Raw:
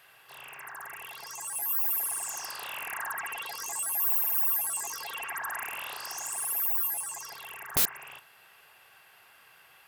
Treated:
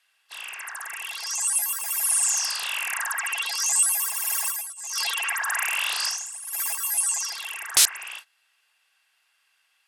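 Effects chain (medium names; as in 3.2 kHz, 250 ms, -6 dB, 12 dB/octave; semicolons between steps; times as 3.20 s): gate -50 dBFS, range -20 dB; frequency weighting ITU-R 468; 4.30–6.75 s: compressor with a negative ratio -31 dBFS, ratio -0.5; trim +3 dB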